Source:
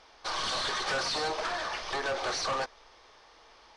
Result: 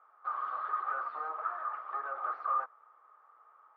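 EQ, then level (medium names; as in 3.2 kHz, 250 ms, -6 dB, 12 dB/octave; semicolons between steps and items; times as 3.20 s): high-pass 550 Hz 12 dB/octave; four-pole ladder low-pass 1.3 kHz, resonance 85%; band-stop 980 Hz, Q 15; 0.0 dB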